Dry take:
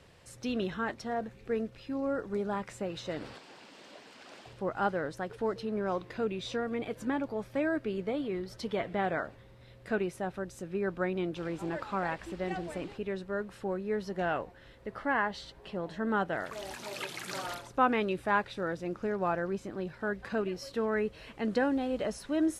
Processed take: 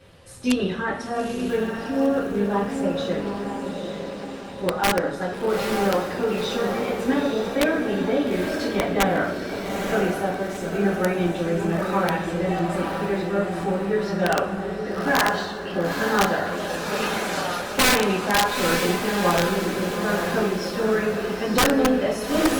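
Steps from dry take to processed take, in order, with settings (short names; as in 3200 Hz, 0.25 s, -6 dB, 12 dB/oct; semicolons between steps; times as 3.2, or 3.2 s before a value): bin magnitudes rounded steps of 15 dB; reverb, pre-delay 3 ms, DRR -6.5 dB; wrapped overs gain 14 dB; diffused feedback echo 0.888 s, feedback 51%, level -5 dB; gain +2.5 dB; Opus 32 kbps 48000 Hz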